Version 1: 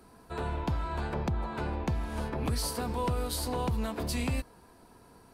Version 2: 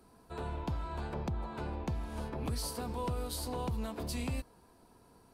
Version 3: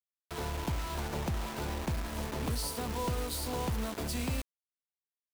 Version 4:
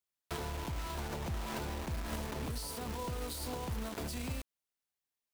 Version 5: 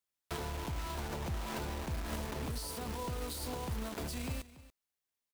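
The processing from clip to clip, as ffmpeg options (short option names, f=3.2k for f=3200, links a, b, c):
-af "equalizer=f=1.8k:t=o:w=0.93:g=-3.5,volume=-5dB"
-af "acrusher=bits=6:mix=0:aa=0.000001,volume=2dB"
-af "alimiter=level_in=11.5dB:limit=-24dB:level=0:latency=1:release=137,volume=-11.5dB,volume=4dB"
-af "aecho=1:1:284:0.133"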